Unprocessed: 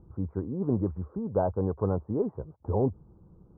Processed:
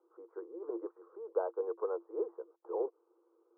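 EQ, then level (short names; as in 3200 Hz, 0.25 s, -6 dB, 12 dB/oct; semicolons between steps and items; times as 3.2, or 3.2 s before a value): rippled Chebyshev high-pass 330 Hz, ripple 9 dB; air absorption 400 m; 0.0 dB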